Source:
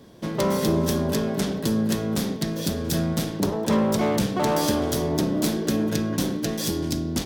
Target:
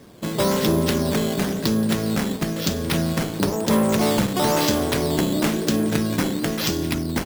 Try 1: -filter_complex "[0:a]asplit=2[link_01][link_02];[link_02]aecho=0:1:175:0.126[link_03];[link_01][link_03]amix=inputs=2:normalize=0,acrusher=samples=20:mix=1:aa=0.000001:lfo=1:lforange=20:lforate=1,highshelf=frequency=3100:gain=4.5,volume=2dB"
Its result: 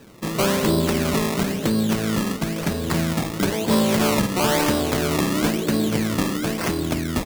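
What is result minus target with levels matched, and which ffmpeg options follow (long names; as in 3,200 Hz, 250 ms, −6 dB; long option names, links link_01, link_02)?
sample-and-hold swept by an LFO: distortion +5 dB
-filter_complex "[0:a]asplit=2[link_01][link_02];[link_02]aecho=0:1:175:0.126[link_03];[link_01][link_03]amix=inputs=2:normalize=0,acrusher=samples=8:mix=1:aa=0.000001:lfo=1:lforange=8:lforate=1,highshelf=frequency=3100:gain=4.5,volume=2dB"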